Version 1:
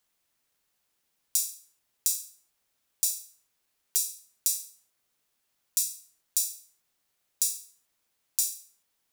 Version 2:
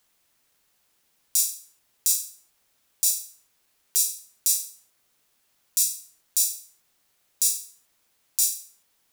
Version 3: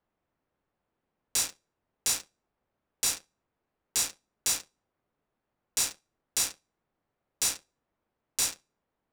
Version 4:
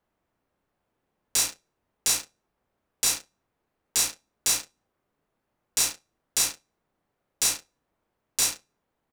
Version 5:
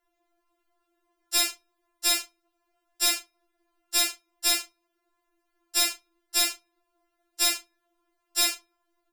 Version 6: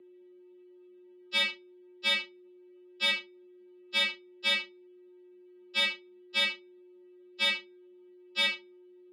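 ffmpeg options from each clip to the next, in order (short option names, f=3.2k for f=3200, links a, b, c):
-af "alimiter=level_in=9dB:limit=-1dB:release=50:level=0:latency=1,volume=-1dB"
-af "adynamicsmooth=sensitivity=6:basefreq=1.1k,volume=-1dB"
-filter_complex "[0:a]asplit=2[a][b];[b]adelay=33,volume=-7.5dB[c];[a][c]amix=inputs=2:normalize=0,volume=3.5dB"
-af "afftfilt=real='re*4*eq(mod(b,16),0)':imag='im*4*eq(mod(b,16),0)':win_size=2048:overlap=0.75,volume=6dB"
-af "aeval=exprs='val(0)+0.00355*sin(2*PI*490*n/s)':c=same,highpass=f=330:t=q:w=0.5412,highpass=f=330:t=q:w=1.307,lowpass=f=3.6k:t=q:w=0.5176,lowpass=f=3.6k:t=q:w=0.7071,lowpass=f=3.6k:t=q:w=1.932,afreqshift=-130,aexciter=amount=1.7:drive=9.5:freq=2.1k,volume=-3.5dB"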